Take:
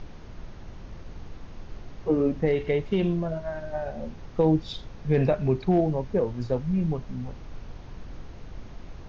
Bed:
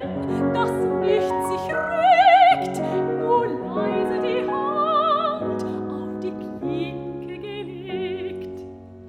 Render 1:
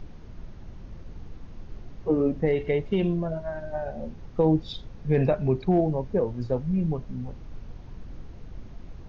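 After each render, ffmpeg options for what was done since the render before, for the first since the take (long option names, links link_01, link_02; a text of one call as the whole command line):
ffmpeg -i in.wav -af "afftdn=noise_reduction=6:noise_floor=-43" out.wav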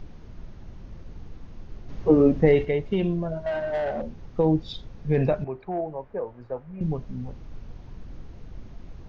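ffmpeg -i in.wav -filter_complex "[0:a]asettb=1/sr,asplit=3[link_01][link_02][link_03];[link_01]atrim=end=3.464[link_04];[link_02]atrim=start=3.46:end=4.02,asetpts=PTS-STARTPTS,afade=type=in:duration=0.004:curve=qsin,afade=type=out:start_time=0.556:duration=0.004:curve=qsin,asplit=2[link_05][link_06];[link_06]highpass=frequency=720:poles=1,volume=22dB,asoftclip=type=tanh:threshold=-19dB[link_07];[link_05][link_07]amix=inputs=2:normalize=0,lowpass=frequency=1500:poles=1,volume=-6dB[link_08];[link_03]atrim=start=4.016[link_09];[link_04][link_08]acrossfade=duration=0.004:curve1=hsin:curve2=qsin[link_10];[link_10][link_09]acrossfade=duration=0.004:curve1=qsin:curve2=hsin,asettb=1/sr,asplit=3[link_11][link_12][link_13];[link_11]atrim=end=5.444[link_14];[link_12]atrim=start=5.44:end=6.81,asetpts=PTS-STARTPTS,afade=type=in:duration=0.004:curve=qsin,afade=type=out:start_time=1.366:duration=0.004:curve=qsin,acrossover=split=510 2300:gain=0.178 1 0.0708[link_15][link_16][link_17];[link_15][link_16][link_17]amix=inputs=3:normalize=0[link_18];[link_13]atrim=start=6.806[link_19];[link_14][link_18]acrossfade=duration=0.004:curve1=hsin:curve2=qsin[link_20];[link_20][link_19]acrossfade=duration=0.004:curve1=qsin:curve2=hsin,asplit=3[link_21][link_22][link_23];[link_21]atrim=end=1.892[link_24];[link_22]atrim=start=1.888:end=2.652,asetpts=PTS-STARTPTS,volume=6dB[link_25];[link_23]atrim=start=2.648[link_26];[link_24][link_25]acrossfade=duration=0.004:curve1=hsin:curve2=hsin[link_27];[link_27][link_26]acrossfade=duration=0.004:curve1=hsin:curve2=hsin" out.wav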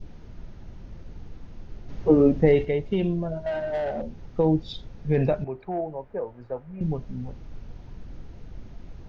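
ffmpeg -i in.wav -af "bandreject=frequency=1100:width=15,adynamicequalizer=threshold=0.00891:dfrequency=1500:dqfactor=0.91:tfrequency=1500:tqfactor=0.91:attack=5:release=100:ratio=0.375:range=2:mode=cutabove:tftype=bell" out.wav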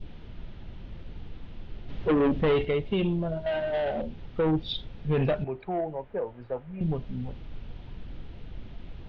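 ffmpeg -i in.wav -af "asoftclip=type=tanh:threshold=-19dB,lowpass=frequency=3300:width_type=q:width=2.6" out.wav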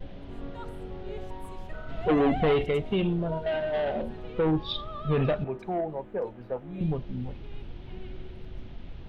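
ffmpeg -i in.wav -i bed.wav -filter_complex "[1:a]volume=-20.5dB[link_01];[0:a][link_01]amix=inputs=2:normalize=0" out.wav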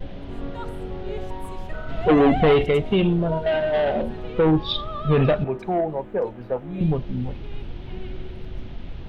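ffmpeg -i in.wav -af "volume=7dB" out.wav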